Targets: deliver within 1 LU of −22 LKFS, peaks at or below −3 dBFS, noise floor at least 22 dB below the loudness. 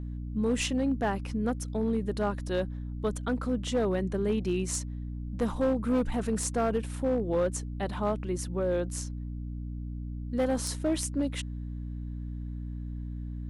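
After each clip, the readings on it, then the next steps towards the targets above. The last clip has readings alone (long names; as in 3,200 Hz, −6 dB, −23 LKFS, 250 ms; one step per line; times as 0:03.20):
share of clipped samples 1.0%; peaks flattened at −21.0 dBFS; mains hum 60 Hz; hum harmonics up to 300 Hz; level of the hum −34 dBFS; integrated loudness −31.5 LKFS; sample peak −21.0 dBFS; target loudness −22.0 LKFS
→ clipped peaks rebuilt −21 dBFS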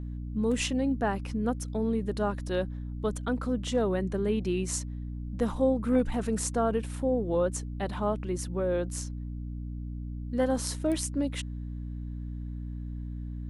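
share of clipped samples 0.0%; mains hum 60 Hz; hum harmonics up to 300 Hz; level of the hum −34 dBFS
→ hum removal 60 Hz, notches 5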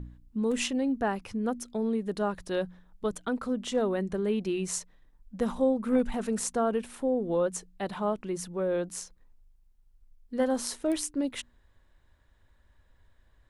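mains hum none found; integrated loudness −30.5 LKFS; sample peak −14.5 dBFS; target loudness −22.0 LKFS
→ level +8.5 dB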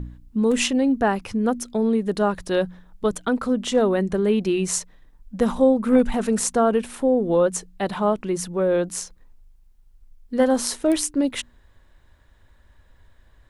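integrated loudness −22.0 LKFS; sample peak −6.0 dBFS; background noise floor −56 dBFS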